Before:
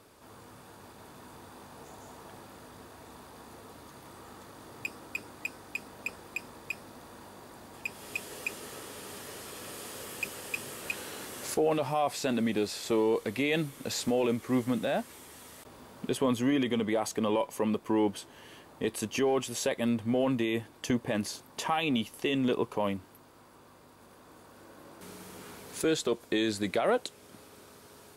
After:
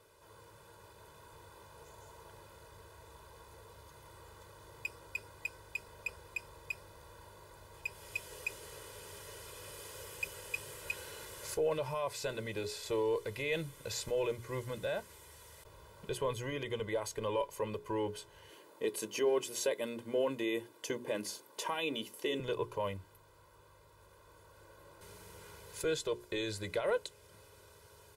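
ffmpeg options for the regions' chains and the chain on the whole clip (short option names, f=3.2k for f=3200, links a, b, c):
-filter_complex "[0:a]asettb=1/sr,asplit=3[a][b][c];[a]atrim=end=18.494[d];[b]atrim=start=18.49:end=22.4,asetpts=PTS-STARTPTS,afade=t=in:d=0.004:c=qsin,afade=t=out:st=3.906:d=0.004:c=qsin,highpass=f=260:t=q:w=3.1,highshelf=f=8.2k:g=5.5,bandreject=f=50:t=h:w=6,bandreject=f=100:t=h:w=6,bandreject=f=150:t=h:w=6,bandreject=f=200:t=h:w=6,bandreject=f=250:t=h:w=6,bandreject=f=300:t=h:w=6,bandreject=f=350:t=h:w=6[e];[c]atrim=start=22.396[f];[d][e]acrossfade=d=0.004:c1=hsin:c2=qsin[g];[g][f]acrossfade=d=0.004:c1=qsin:c2=hsin,bandreject=f=60:t=h:w=6,bandreject=f=120:t=h:w=6,bandreject=f=180:t=h:w=6,bandreject=f=240:t=h:w=6,bandreject=f=300:t=h:w=6,bandreject=f=360:t=h:w=6,bandreject=f=420:t=h:w=6,aecho=1:1:2:0.81,asubboost=boost=2.5:cutoff=120,volume=-8dB"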